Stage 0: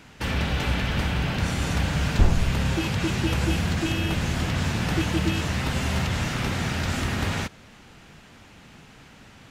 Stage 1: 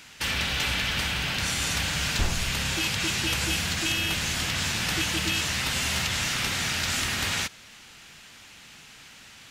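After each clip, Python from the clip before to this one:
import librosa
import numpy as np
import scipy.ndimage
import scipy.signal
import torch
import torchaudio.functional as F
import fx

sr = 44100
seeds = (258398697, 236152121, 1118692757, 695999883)

y = fx.tilt_shelf(x, sr, db=-9.0, hz=1400.0)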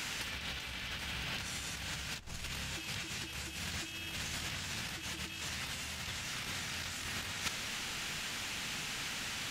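y = fx.over_compress(x, sr, threshold_db=-35.0, ratio=-0.5)
y = F.gain(torch.from_numpy(y), -2.0).numpy()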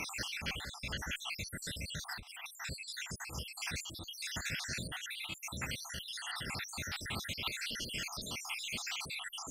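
y = fx.spec_dropout(x, sr, seeds[0], share_pct=72)
y = fx.cheby_harmonics(y, sr, harmonics=(6,), levels_db=(-38,), full_scale_db=-28.5)
y = F.gain(torch.from_numpy(y), 5.0).numpy()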